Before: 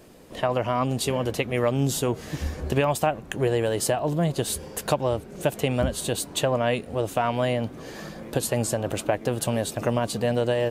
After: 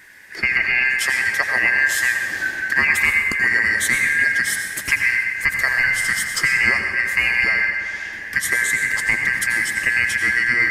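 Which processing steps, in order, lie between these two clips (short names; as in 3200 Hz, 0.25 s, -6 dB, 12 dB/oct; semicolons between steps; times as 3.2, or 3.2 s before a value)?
four-band scrambler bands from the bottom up 2143; 7.49–8.13 BPF 720–7700 Hz; darkening echo 0.125 s, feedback 81%, low-pass 3200 Hz, level -11.5 dB; on a send at -4.5 dB: reverb RT60 1.3 s, pre-delay 80 ms; on the sum: gain +4 dB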